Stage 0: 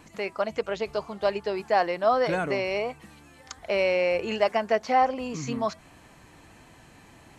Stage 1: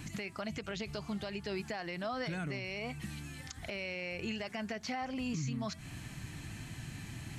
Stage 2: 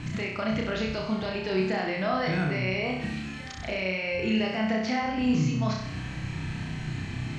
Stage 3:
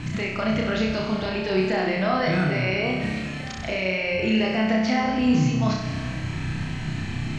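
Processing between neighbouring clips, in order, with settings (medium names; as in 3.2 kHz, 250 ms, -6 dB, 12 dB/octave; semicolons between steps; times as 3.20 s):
graphic EQ 125/500/1000 Hz +8/-12/-9 dB; compression 4:1, threshold -41 dBFS, peak gain reduction 13 dB; peak limiter -36 dBFS, peak gain reduction 10 dB; trim +7 dB
distance through air 130 m; flutter echo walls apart 5.5 m, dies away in 0.75 s; trim +8 dB
algorithmic reverb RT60 2.1 s, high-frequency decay 0.8×, pre-delay 95 ms, DRR 8.5 dB; trim +4 dB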